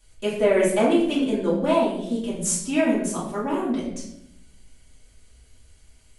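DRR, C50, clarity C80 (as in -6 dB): -8.5 dB, 3.0 dB, 6.5 dB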